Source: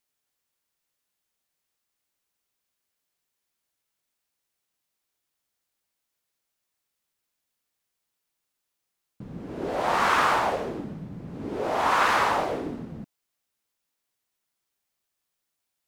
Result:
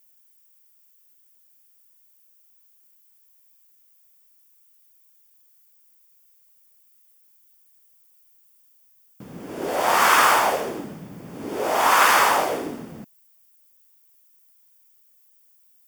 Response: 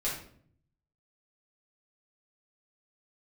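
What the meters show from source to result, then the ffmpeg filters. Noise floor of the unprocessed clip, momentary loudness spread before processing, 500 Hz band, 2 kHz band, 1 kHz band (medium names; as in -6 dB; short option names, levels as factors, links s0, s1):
-82 dBFS, 18 LU, +3.5 dB, +6.0 dB, +5.0 dB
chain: -af "aemphasis=mode=production:type=bsi,bandreject=f=4000:w=7.4,volume=1.78"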